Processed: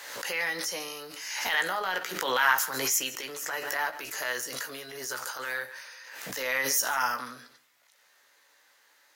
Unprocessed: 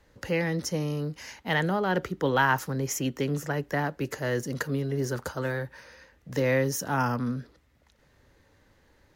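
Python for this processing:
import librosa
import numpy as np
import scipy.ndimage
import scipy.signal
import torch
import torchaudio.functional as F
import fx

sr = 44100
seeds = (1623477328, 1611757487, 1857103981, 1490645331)

p1 = scipy.signal.sosfilt(scipy.signal.butter(2, 1000.0, 'highpass', fs=sr, output='sos'), x)
p2 = fx.high_shelf(p1, sr, hz=5500.0, db=8.5)
p3 = fx.transient(p2, sr, attack_db=-11, sustain_db=2)
p4 = fx.doubler(p3, sr, ms=16.0, db=-7)
p5 = p4 + fx.echo_single(p4, sr, ms=143, db=-19.0, dry=0)
p6 = fx.room_shoebox(p5, sr, seeds[0], volume_m3=180.0, walls='furnished', distance_m=0.35)
p7 = fx.pre_swell(p6, sr, db_per_s=42.0)
y = p7 * librosa.db_to_amplitude(3.0)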